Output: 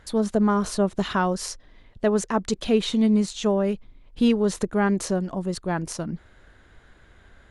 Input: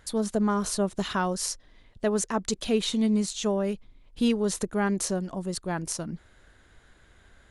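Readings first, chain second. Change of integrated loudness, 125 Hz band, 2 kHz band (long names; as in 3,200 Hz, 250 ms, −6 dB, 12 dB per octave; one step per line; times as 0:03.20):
+3.5 dB, +4.5 dB, +3.5 dB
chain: high-shelf EQ 5,200 Hz −11 dB
level +4.5 dB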